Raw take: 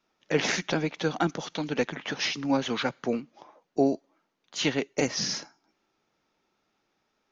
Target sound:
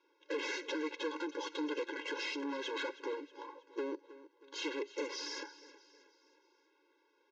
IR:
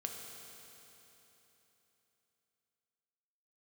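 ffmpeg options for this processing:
-filter_complex "[0:a]acompressor=threshold=-28dB:ratio=6,aeval=exprs='(tanh(100*val(0)+0.5)-tanh(0.5))/100':c=same,adynamicsmooth=sensitivity=4.5:basefreq=4.4k,asplit=2[a][b];[b]aecho=0:1:318|636|954|1272:0.141|0.0664|0.0312|0.0147[c];[a][c]amix=inputs=2:normalize=0,aresample=16000,aresample=44100,afftfilt=real='re*eq(mod(floor(b*sr/1024/280),2),1)':imag='im*eq(mod(floor(b*sr/1024/280),2),1)':win_size=1024:overlap=0.75,volume=8.5dB"

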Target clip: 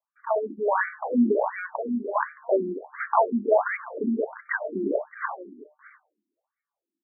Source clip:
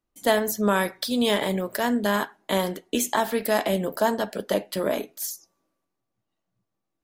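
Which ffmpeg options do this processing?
-filter_complex "[0:a]highpass=f=89:w=0.5412,highpass=f=89:w=1.3066,acrusher=samples=17:mix=1:aa=0.000001:lfo=1:lforange=10.2:lforate=2,lowshelf=f=120:g=-8.5,asettb=1/sr,asplit=3[a][b][c];[a]atrim=end=1.664[d];[b]atrim=start=1.66:end=2.16,asetpts=PTS-STARTPTS,afade=t=in:d=0.004:c=qsin,afade=t=out:st=0.496:d=0.004:c=qsin,acompressor=threshold=-36dB:ratio=2[e];[c]atrim=start=2.156[f];[d][e]acrossfade=d=0.004:c1=hsin:c2=qsin[g];[g][f]acrossfade=d=0.004:c1=qsin:c2=hsin,equalizer=f=1.3k:t=o:w=0.2:g=-6.5,bandreject=f=151.3:t=h:w=4,bandreject=f=302.6:t=h:w=4,bandreject=f=453.9:t=h:w=4,bandreject=f=605.2:t=h:w=4,bandreject=f=756.5:t=h:w=4,bandreject=f=907.8:t=h:w=4,bandreject=f=1.0591k:t=h:w=4,bandreject=f=1.2104k:t=h:w=4,bandreject=f=1.3617k:t=h:w=4,bandreject=f=1.513k:t=h:w=4,bandreject=f=1.6643k:t=h:w=4,bandreject=f=1.8156k:t=h:w=4,dynaudnorm=f=130:g=11:m=9dB,aecho=1:1:619:0.126,afftfilt=real='re*between(b*sr/1024,260*pow(1700/260,0.5+0.5*sin(2*PI*1.4*pts/sr))/1.41,260*pow(1700/260,0.5+0.5*sin(2*PI*1.4*pts/sr))*1.41)':imag='im*between(b*sr/1024,260*pow(1700/260,0.5+0.5*sin(2*PI*1.4*pts/sr))/1.41,260*pow(1700/260,0.5+0.5*sin(2*PI*1.4*pts/sr))*1.41)':win_size=1024:overlap=0.75"

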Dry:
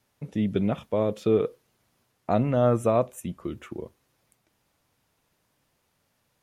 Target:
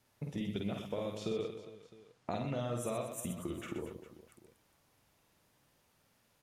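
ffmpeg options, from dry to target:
-filter_complex "[0:a]acrossover=split=2800[a][b];[a]acompressor=threshold=-35dB:ratio=6[c];[c][b]amix=inputs=2:normalize=0,asettb=1/sr,asplit=3[d][e][f];[d]atrim=end=1.174[g];[e]atrim=start=1.17:end=2.77,asetpts=PTS-STARTPTS,afade=t=in:d=0.004:c=qsin,afade=t=out:st=1.596:d=0.004:c=qsin,lowpass=7.7k[h];[f]atrim=start=2.766[i];[g][h]acrossfade=d=0.004:c1=hsin:c2=qsin[j];[j][i]acrossfade=d=0.004:c1=qsin:c2=hsin,aecho=1:1:50|125|237.5|406.2|659.4:0.631|0.398|0.251|0.158|0.1,volume=-2dB"

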